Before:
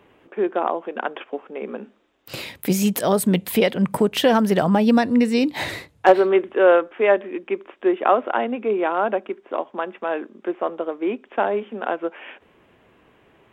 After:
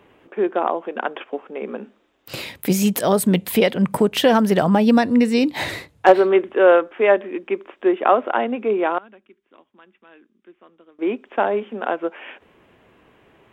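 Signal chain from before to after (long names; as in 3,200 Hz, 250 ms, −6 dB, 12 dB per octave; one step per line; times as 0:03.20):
0:08.98–0:10.99: guitar amp tone stack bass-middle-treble 6-0-2
level +1.5 dB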